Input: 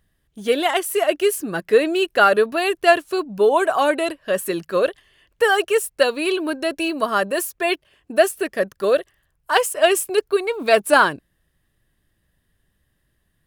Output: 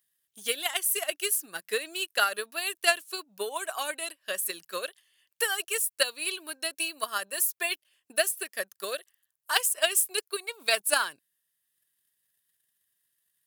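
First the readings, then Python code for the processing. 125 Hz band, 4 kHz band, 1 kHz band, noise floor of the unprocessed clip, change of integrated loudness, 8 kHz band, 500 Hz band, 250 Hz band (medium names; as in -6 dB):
no reading, -3.0 dB, -14.0 dB, -69 dBFS, -9.0 dB, +1.5 dB, -17.0 dB, -23.0 dB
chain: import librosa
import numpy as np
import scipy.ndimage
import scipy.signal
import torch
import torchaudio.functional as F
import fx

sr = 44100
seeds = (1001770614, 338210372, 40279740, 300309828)

y = fx.transient(x, sr, attack_db=8, sustain_db=-2)
y = scipy.signal.sosfilt(scipy.signal.butter(4, 92.0, 'highpass', fs=sr, output='sos'), y)
y = scipy.signal.lfilter([1.0, -0.97], [1.0], y)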